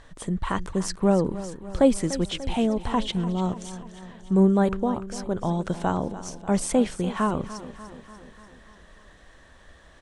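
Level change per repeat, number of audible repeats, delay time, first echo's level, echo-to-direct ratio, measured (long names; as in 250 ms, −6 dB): −4.5 dB, 5, 294 ms, −14.5 dB, −12.5 dB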